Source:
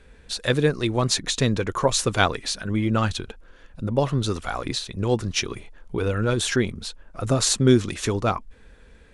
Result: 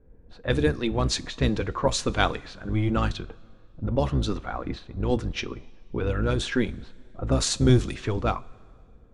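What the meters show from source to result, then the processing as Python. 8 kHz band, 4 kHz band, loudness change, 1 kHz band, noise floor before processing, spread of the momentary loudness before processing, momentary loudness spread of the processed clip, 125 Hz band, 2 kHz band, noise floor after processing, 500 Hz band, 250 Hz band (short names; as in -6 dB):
-7.5 dB, -5.5 dB, -3.0 dB, -3.0 dB, -51 dBFS, 13 LU, 13 LU, -1.5 dB, -4.0 dB, -52 dBFS, -3.5 dB, -2.5 dB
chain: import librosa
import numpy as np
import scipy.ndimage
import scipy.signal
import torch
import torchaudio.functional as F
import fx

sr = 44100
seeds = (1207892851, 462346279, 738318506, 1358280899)

y = fx.octave_divider(x, sr, octaves=1, level_db=-1.0)
y = fx.env_lowpass(y, sr, base_hz=530.0, full_db=-14.5)
y = fx.rev_double_slope(y, sr, seeds[0], early_s=0.22, late_s=2.1, knee_db=-19, drr_db=13.0)
y = F.gain(torch.from_numpy(y), -3.5).numpy()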